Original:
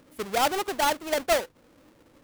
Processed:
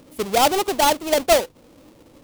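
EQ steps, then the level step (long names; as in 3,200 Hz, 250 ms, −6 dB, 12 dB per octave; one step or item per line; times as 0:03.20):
parametric band 1,600 Hz −7 dB 1 octave
+8.5 dB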